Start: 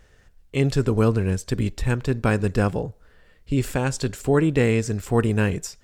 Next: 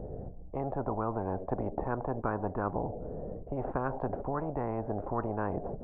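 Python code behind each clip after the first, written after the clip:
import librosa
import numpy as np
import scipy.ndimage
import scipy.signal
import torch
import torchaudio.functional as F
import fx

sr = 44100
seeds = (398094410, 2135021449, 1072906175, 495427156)

y = scipy.signal.sosfilt(scipy.signal.cheby1(4, 1.0, 720.0, 'lowpass', fs=sr, output='sos'), x)
y = fx.rider(y, sr, range_db=10, speed_s=0.5)
y = fx.spectral_comp(y, sr, ratio=10.0)
y = F.gain(torch.from_numpy(y), -8.0).numpy()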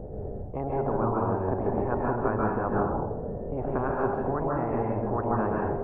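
y = fx.rev_plate(x, sr, seeds[0], rt60_s=0.75, hf_ratio=0.85, predelay_ms=120, drr_db=-3.0)
y = F.gain(torch.from_numpy(y), 2.0).numpy()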